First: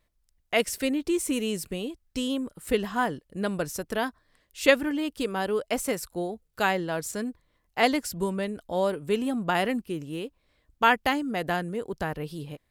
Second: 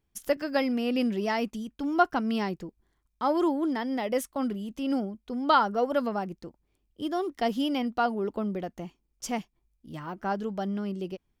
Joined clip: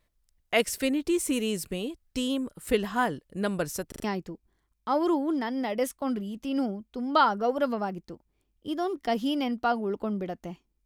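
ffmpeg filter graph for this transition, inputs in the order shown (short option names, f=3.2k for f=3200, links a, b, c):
-filter_complex "[0:a]apad=whole_dur=10.85,atrim=end=10.85,asplit=4[a][b][c][d];[a]atrim=end=3.922[e];[b]atrim=start=3.878:end=3.922[f];[c]atrim=start=3.878:end=3.922[g];[d]atrim=start=3.878:end=3.922[h];[1:a]atrim=start=2.378:end=9.19[i];[e][f]acrossfade=d=0.004:c1=hsin:c2=hsin[j];[j][g]acrossfade=d=0.004:c1=hsin:c2=hsin[k];[k][h]acrossfade=d=0.004:c1=hsin:c2=hsin[l];[l][i]acrossfade=d=0.004:c1=hsin:c2=hsin"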